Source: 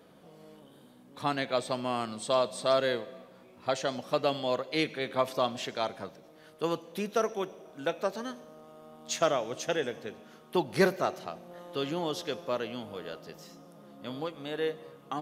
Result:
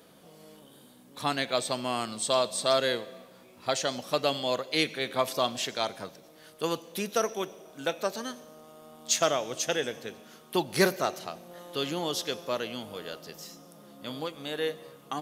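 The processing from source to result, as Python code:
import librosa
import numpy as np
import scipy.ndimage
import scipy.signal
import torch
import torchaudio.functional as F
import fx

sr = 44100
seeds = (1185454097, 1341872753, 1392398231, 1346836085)

y = fx.high_shelf(x, sr, hz=3500.0, db=11.5)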